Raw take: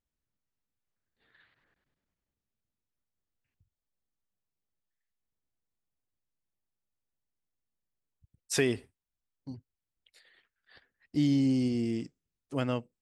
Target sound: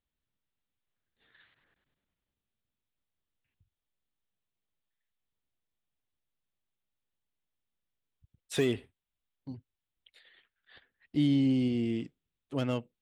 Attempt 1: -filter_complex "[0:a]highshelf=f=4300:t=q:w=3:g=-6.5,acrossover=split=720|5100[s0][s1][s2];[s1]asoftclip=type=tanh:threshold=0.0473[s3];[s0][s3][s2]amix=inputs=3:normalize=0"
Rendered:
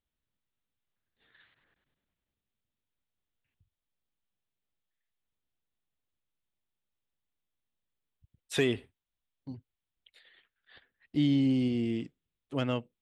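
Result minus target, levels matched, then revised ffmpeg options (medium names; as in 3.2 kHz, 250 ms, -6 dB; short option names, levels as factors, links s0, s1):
saturation: distortion -8 dB
-filter_complex "[0:a]highshelf=f=4300:t=q:w=3:g=-6.5,acrossover=split=720|5100[s0][s1][s2];[s1]asoftclip=type=tanh:threshold=0.0158[s3];[s0][s3][s2]amix=inputs=3:normalize=0"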